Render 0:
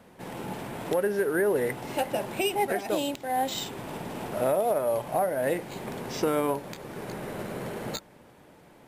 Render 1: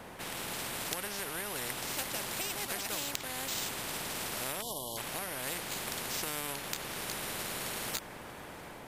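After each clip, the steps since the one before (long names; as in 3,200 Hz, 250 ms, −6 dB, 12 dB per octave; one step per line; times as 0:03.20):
time-frequency box erased 0:04.62–0:04.98, 1,100–2,900 Hz
automatic gain control gain up to 3 dB
every bin compressed towards the loudest bin 4 to 1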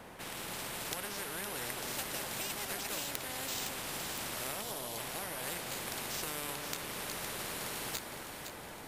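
wrap-around overflow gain 13.5 dB
delay that swaps between a low-pass and a high-pass 256 ms, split 1,600 Hz, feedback 75%, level −5.5 dB
on a send at −20.5 dB: convolution reverb RT60 1.0 s, pre-delay 5 ms
on the sum: level −3 dB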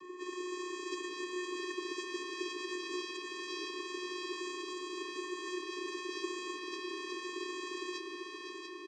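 hearing-aid frequency compression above 3,300 Hz 1.5 to 1
channel vocoder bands 16, square 361 Hz
single-tap delay 691 ms −6 dB
level +3 dB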